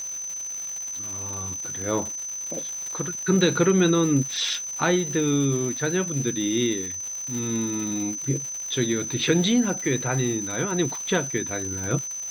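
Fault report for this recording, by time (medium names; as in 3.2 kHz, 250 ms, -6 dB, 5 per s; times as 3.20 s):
crackle 270 per s -31 dBFS
whine 6.1 kHz -30 dBFS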